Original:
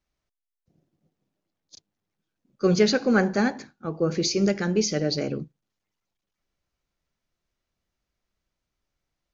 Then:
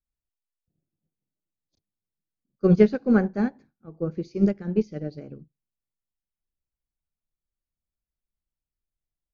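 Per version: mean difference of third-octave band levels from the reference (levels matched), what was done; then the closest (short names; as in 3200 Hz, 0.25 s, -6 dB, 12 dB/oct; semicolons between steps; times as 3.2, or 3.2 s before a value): 8.5 dB: Bessel low-pass 5200 Hz; tilt -3 dB/oct; upward expander 2.5:1, over -24 dBFS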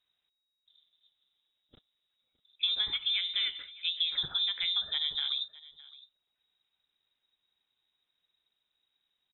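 17.0 dB: compressor 16:1, threshold -27 dBFS, peak gain reduction 14 dB; echo 0.613 s -20.5 dB; inverted band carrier 3800 Hz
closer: first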